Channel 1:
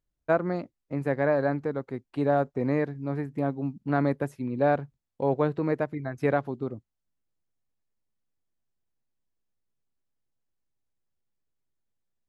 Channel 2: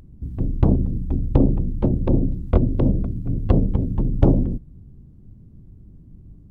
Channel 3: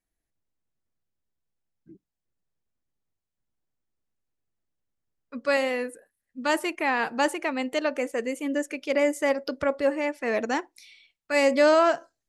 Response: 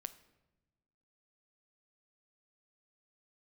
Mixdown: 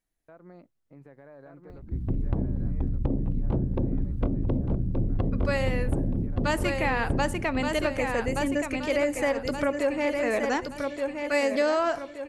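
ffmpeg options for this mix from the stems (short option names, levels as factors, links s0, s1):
-filter_complex "[0:a]acompressor=threshold=0.0398:ratio=6,alimiter=level_in=1.19:limit=0.0631:level=0:latency=1:release=71,volume=0.841,volume=0.2,asplit=2[s0][s1];[s1]volume=0.668[s2];[1:a]bandreject=f=6700:w=19,adelay=1700,volume=0.794,asplit=3[s3][s4][s5];[s4]volume=0.316[s6];[s5]volume=0.398[s7];[2:a]volume=0.75,asplit=3[s8][s9][s10];[s9]volume=0.668[s11];[s10]volume=0.668[s12];[s0][s3]amix=inputs=2:normalize=0,highshelf=f=6800:g=-10.5,acompressor=threshold=0.0631:ratio=6,volume=1[s13];[3:a]atrim=start_sample=2205[s14];[s6][s11]amix=inputs=2:normalize=0[s15];[s15][s14]afir=irnorm=-1:irlink=0[s16];[s2][s7][s12]amix=inputs=3:normalize=0,aecho=0:1:1174|2348|3522|4696|5870|7044:1|0.43|0.185|0.0795|0.0342|0.0147[s17];[s8][s13][s16][s17]amix=inputs=4:normalize=0,acompressor=threshold=0.0891:ratio=6"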